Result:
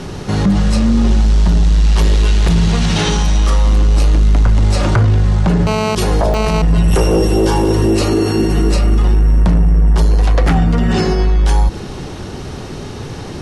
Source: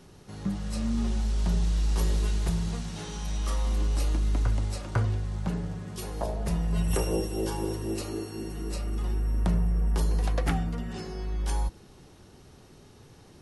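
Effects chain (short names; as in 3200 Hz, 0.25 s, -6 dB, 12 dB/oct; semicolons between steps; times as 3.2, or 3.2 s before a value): 1.84–3.1 bell 2800 Hz +4.5 dB 1.5 oct; soft clip -21.5 dBFS, distortion -18 dB; air absorption 54 m; 5.67–6.62 GSM buzz -32 dBFS; maximiser +31 dB; gain -5 dB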